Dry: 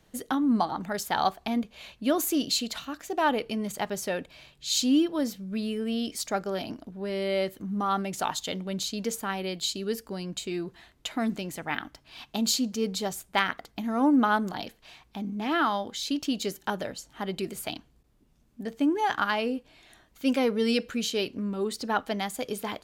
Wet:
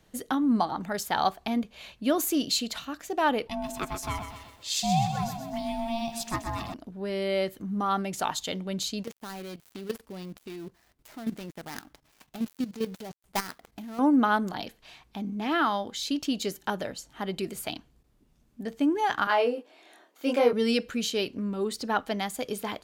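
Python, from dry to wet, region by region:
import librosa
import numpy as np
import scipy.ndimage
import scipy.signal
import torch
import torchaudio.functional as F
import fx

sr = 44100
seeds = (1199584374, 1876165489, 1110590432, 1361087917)

y = fx.chain(x, sr, fx.ring_mod(carrier_hz=460.0),
    fx.echo_crushed(ms=127, feedback_pct=55, bits=9, wet_db=-8), at=(3.47, 6.74))
y = fx.chain(y, sr, fx.dead_time(dead_ms=0.17),
    fx.high_shelf(hz=9900.0, db=5.0),
    fx.level_steps(step_db=13), at=(9.03, 13.99))
y = fx.chain(y, sr, fx.highpass(hz=330.0, slope=24),
    fx.tilt_shelf(db=5.0, hz=1300.0),
    fx.doubler(ms=25.0, db=-2.0), at=(19.27, 20.53))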